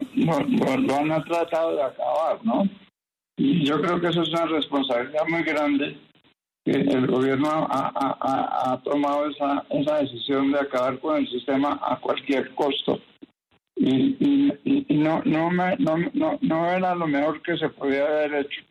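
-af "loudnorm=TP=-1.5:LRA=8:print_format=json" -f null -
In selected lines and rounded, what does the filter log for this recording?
"input_i" : "-23.6",
"input_tp" : "-10.7",
"input_lra" : "1.3",
"input_thresh" : "-33.8",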